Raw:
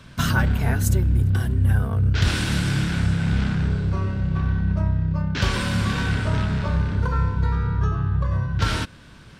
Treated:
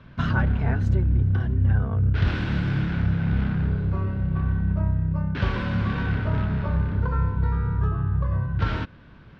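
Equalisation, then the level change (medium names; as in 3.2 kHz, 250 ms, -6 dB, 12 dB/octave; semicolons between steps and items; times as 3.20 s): distance through air 210 m; treble shelf 4.5 kHz -12 dB; -1.5 dB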